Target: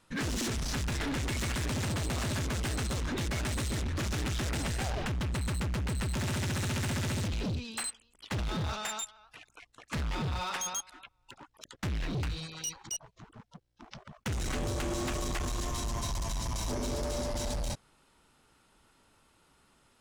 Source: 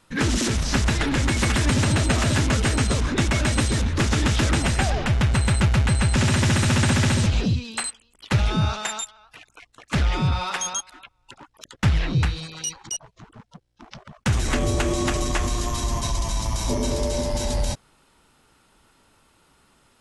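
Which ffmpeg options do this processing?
-af "asoftclip=type=hard:threshold=-24.5dB,volume=-6dB"

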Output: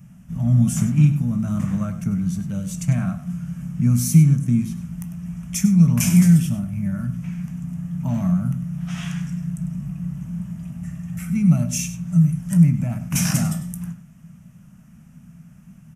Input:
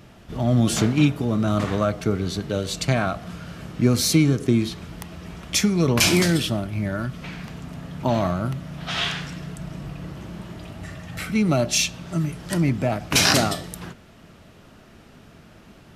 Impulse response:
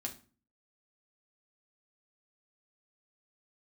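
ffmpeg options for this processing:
-filter_complex "[0:a]firequalizer=gain_entry='entry(110,0);entry(160,14);entry(370,-24);entry(560,-13);entry(1100,-9);entry(2600,-8);entry(4100,-21);entry(5900,-1);entry(9900,3)':delay=0.05:min_phase=1,aecho=1:1:99:0.224,asplit=2[a][b];[1:a]atrim=start_sample=2205,adelay=17[c];[b][c]afir=irnorm=-1:irlink=0,volume=-10.5dB[d];[a][d]amix=inputs=2:normalize=0,volume=-2.5dB"

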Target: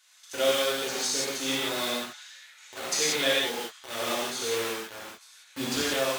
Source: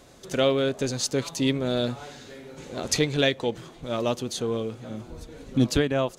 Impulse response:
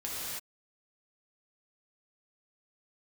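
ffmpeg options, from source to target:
-filter_complex "[0:a]acrossover=split=1200[a][b];[a]acrusher=bits=4:mix=0:aa=0.000001[c];[c][b]amix=inputs=2:normalize=0,highpass=f=910:p=1[d];[1:a]atrim=start_sample=2205,asetrate=74970,aresample=44100[e];[d][e]afir=irnorm=-1:irlink=0,volume=2dB"

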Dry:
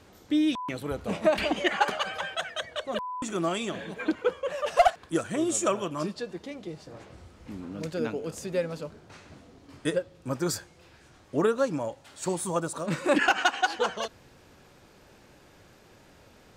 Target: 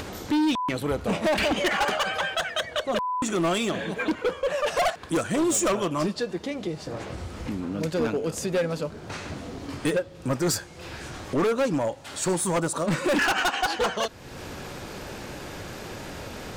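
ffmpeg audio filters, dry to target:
-af "asoftclip=type=hard:threshold=-26.5dB,acompressor=mode=upward:threshold=-32dB:ratio=2.5,volume=6.5dB"

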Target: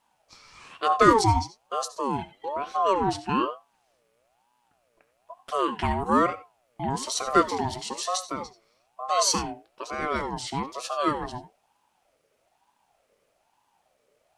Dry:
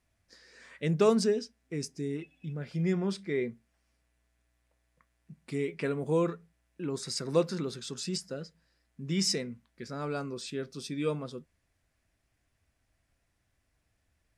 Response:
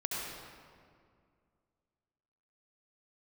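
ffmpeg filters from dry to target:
-filter_complex "[0:a]asplit=2[a][b];[1:a]atrim=start_sample=2205,atrim=end_sample=4410[c];[b][c]afir=irnorm=-1:irlink=0,volume=-7.5dB[d];[a][d]amix=inputs=2:normalize=0,aeval=exprs='val(0)*sin(2*PI*710*n/s+710*0.3/1.1*sin(2*PI*1.1*n/s))':c=same,volume=6dB"

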